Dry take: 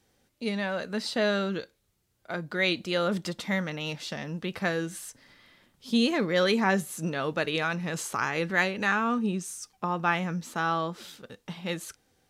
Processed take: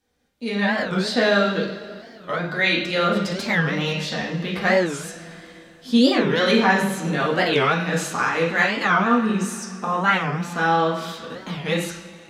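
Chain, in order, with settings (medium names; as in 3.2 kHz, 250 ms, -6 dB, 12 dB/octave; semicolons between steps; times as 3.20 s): level rider gain up to 13.5 dB; reverberation, pre-delay 3 ms, DRR -5 dB; warped record 45 rpm, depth 250 cents; trim -8.5 dB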